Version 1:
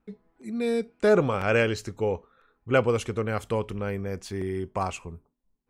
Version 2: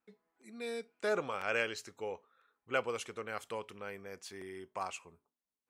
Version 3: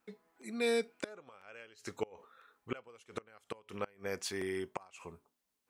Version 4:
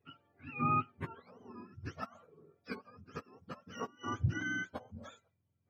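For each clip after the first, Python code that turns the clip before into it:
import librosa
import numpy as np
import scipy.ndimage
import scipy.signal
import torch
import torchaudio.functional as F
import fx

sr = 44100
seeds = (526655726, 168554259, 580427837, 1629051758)

y1 = fx.highpass(x, sr, hz=1000.0, slope=6)
y1 = y1 * 10.0 ** (-6.0 / 20.0)
y2 = fx.gate_flip(y1, sr, shuts_db=-30.0, range_db=-28)
y2 = y2 * 10.0 ** (9.0 / 20.0)
y3 = fx.octave_mirror(y2, sr, pivot_hz=760.0)
y3 = fx.dynamic_eq(y3, sr, hz=2800.0, q=2.0, threshold_db=-55.0, ratio=4.0, max_db=-4)
y3 = y3 * 10.0 ** (1.0 / 20.0)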